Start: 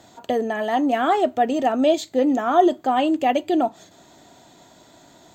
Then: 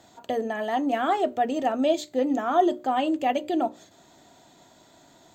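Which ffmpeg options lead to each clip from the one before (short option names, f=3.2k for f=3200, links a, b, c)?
-af "bandreject=f=60:t=h:w=6,bandreject=f=120:t=h:w=6,bandreject=f=180:t=h:w=6,bandreject=f=240:t=h:w=6,bandreject=f=300:t=h:w=6,bandreject=f=360:t=h:w=6,bandreject=f=420:t=h:w=6,bandreject=f=480:t=h:w=6,bandreject=f=540:t=h:w=6,bandreject=f=600:t=h:w=6,volume=-4.5dB"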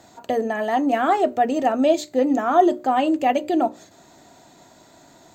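-af "equalizer=f=3.3k:w=5.1:g=-6.5,volume=5dB"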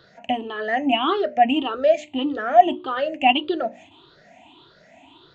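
-af "afftfilt=real='re*pow(10,21/40*sin(2*PI*(0.6*log(max(b,1)*sr/1024/100)/log(2)-(1.7)*(pts-256)/sr)))':imag='im*pow(10,21/40*sin(2*PI*(0.6*log(max(b,1)*sr/1024/100)/log(2)-(1.7)*(pts-256)/sr)))':win_size=1024:overlap=0.75,lowpass=f=3k:t=q:w=4.9,volume=-6.5dB"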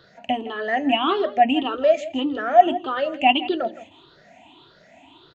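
-af "aecho=1:1:164:0.15"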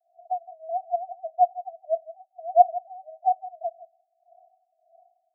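-af "asuperpass=centerf=700:order=12:qfactor=5.9,volume=-3dB"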